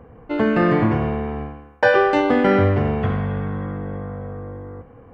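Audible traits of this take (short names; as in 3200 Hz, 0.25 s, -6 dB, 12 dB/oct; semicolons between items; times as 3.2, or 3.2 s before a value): noise floor -46 dBFS; spectral tilt -4.0 dB/oct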